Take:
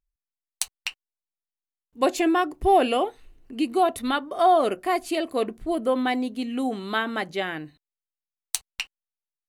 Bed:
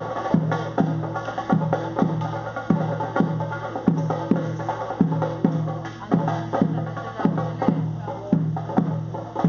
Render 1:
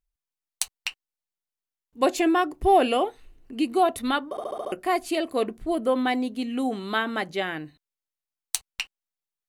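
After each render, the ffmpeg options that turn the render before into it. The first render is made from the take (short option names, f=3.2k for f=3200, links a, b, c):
-filter_complex "[0:a]asplit=7[a][b][c][d][e][f][g];[a]atrim=end=4.372[h];[b]atrim=start=4.298:end=4.372[i];[c]atrim=start=4.298:end=4.372[j];[d]atrim=start=4.298:end=4.372[k];[e]atrim=start=4.298:end=4.372[l];[f]atrim=start=4.298:end=4.372[m];[g]atrim=start=4.718[n];[h][i]acrossfade=d=0.004:c1=hsin:c2=hsin[o];[o][j]acrossfade=d=0.004:c1=hsin:c2=hsin[p];[p][k]acrossfade=d=0.004:c1=hsin:c2=hsin[q];[q][l]acrossfade=d=0.004:c1=hsin:c2=hsin[r];[r][m]acrossfade=d=0.004:c1=hsin:c2=hsin[s];[s][n]acrossfade=d=0.004:c1=hsin:c2=hsin"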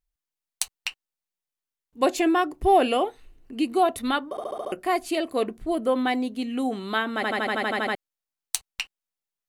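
-filter_complex "[0:a]asplit=11[a][b][c][d][e][f][g][h][i][j][k];[a]atrim=end=7.232[l];[b]atrim=start=7.148:end=7.232[m];[c]atrim=start=7.148:end=7.232[n];[d]atrim=start=7.148:end=7.232[o];[e]atrim=start=7.148:end=7.232[p];[f]atrim=start=7.148:end=7.232[q];[g]atrim=start=7.148:end=7.232[r];[h]atrim=start=7.148:end=7.232[s];[i]atrim=start=7.148:end=7.232[t];[j]atrim=start=7.148:end=7.232[u];[k]atrim=start=7.948[v];[l][m]acrossfade=d=0.004:c1=hsin:c2=hsin[w];[w][n]acrossfade=d=0.004:c1=hsin:c2=hsin[x];[x][o]acrossfade=d=0.004:c1=hsin:c2=hsin[y];[y][p]acrossfade=d=0.004:c1=hsin:c2=hsin[z];[z][q]acrossfade=d=0.004:c1=hsin:c2=hsin[aa];[aa][r]acrossfade=d=0.004:c1=hsin:c2=hsin[ab];[ab][s]acrossfade=d=0.004:c1=hsin:c2=hsin[ac];[ac][t]acrossfade=d=0.004:c1=hsin:c2=hsin[ad];[ad][u]acrossfade=d=0.004:c1=hsin:c2=hsin[ae];[ae][v]acrossfade=d=0.004:c1=hsin:c2=hsin"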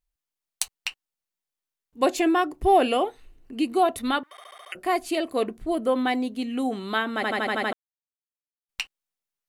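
-filter_complex "[0:a]asettb=1/sr,asplit=3[a][b][c];[a]atrim=end=4.234[d];[b]atrim=start=4.23:end=4.75,asetpts=PTS-STARTPTS,afade=t=in:d=0.004:c=qsin,afade=t=out:st=0.516:d=0.004:c=qsin,highpass=f=2k:t=q:w=5.2[e];[c]atrim=start=4.746[f];[d][e]acrossfade=d=0.004:c1=hsin:c2=qsin[g];[g][f]acrossfade=d=0.004:c1=qsin:c2=hsin,asplit=3[h][i][j];[h]atrim=end=7.73,asetpts=PTS-STARTPTS,afade=t=out:st=7.726:d=0.004:c=hsin[k];[i]atrim=start=7.73:end=8.69,asetpts=PTS-STARTPTS,volume=0[l];[j]atrim=start=8.69,asetpts=PTS-STARTPTS,afade=t=in:d=0.004:c=hsin[m];[k][l][m]concat=n=3:v=0:a=1"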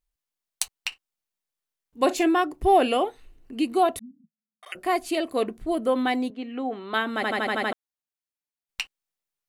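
-filter_complex "[0:a]asettb=1/sr,asplit=3[a][b][c];[a]atrim=end=0.884[d];[b]atrim=start=0.88:end=2.26,asetpts=PTS-STARTPTS,afade=t=in:d=0.004:c=qsin,afade=t=out:st=1.376:d=0.004:c=qsin,asplit=2[e][f];[f]adelay=41,volume=-13.5dB[g];[e][g]amix=inputs=2:normalize=0,atrim=end_sample=60858[h];[c]atrim=start=2.256[i];[d][h]acrossfade=d=0.004:c1=hsin:c2=qsin[j];[j][i]acrossfade=d=0.004:c1=qsin:c2=hsin,asettb=1/sr,asplit=3[k][l][m];[k]atrim=end=3.994[n];[l]atrim=start=3.99:end=4.63,asetpts=PTS-STARTPTS,afade=t=in:d=0.004:c=qsin,afade=t=out:st=0.636:d=0.004:c=qsin,asuperpass=centerf=190:order=8:qfactor=2.9[o];[m]atrim=start=4.626[p];[n][o]acrossfade=d=0.004:c1=hsin:c2=qsin[q];[q][p]acrossfade=d=0.004:c1=qsin:c2=hsin,asettb=1/sr,asplit=3[r][s][t];[r]atrim=end=6.304[u];[s]atrim=start=6.3:end=6.94,asetpts=PTS-STARTPTS,afade=t=in:d=0.004:c=qsin,afade=t=out:st=0.636:d=0.004:c=qsin,highpass=310,lowpass=2.3k[v];[t]atrim=start=6.936[w];[u][v]acrossfade=d=0.004:c1=hsin:c2=qsin[x];[x][w]acrossfade=d=0.004:c1=qsin:c2=hsin"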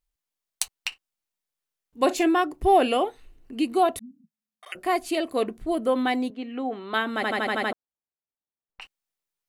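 -filter_complex "[0:a]asplit=3[a][b][c];[a]afade=t=out:st=7.71:d=0.02[d];[b]lowpass=1.1k,afade=t=in:st=7.71:d=0.02,afade=t=out:st=8.81:d=0.02[e];[c]afade=t=in:st=8.81:d=0.02[f];[d][e][f]amix=inputs=3:normalize=0"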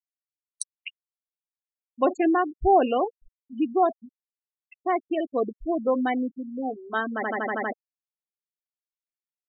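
-af "afftfilt=real='re*gte(hypot(re,im),0.1)':imag='im*gte(hypot(re,im),0.1)':win_size=1024:overlap=0.75,equalizer=f=3.6k:t=o:w=1.2:g=-7.5"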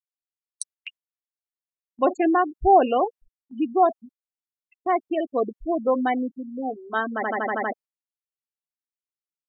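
-af "agate=range=-10dB:threshold=-47dB:ratio=16:detection=peak,adynamicequalizer=threshold=0.0282:dfrequency=860:dqfactor=0.94:tfrequency=860:tqfactor=0.94:attack=5:release=100:ratio=0.375:range=2:mode=boostabove:tftype=bell"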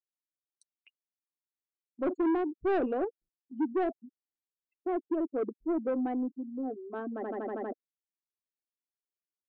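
-af "bandpass=f=330:t=q:w=2.2:csg=0,asoftclip=type=tanh:threshold=-24dB"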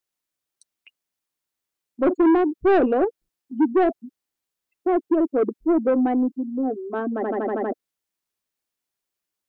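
-af "volume=11dB"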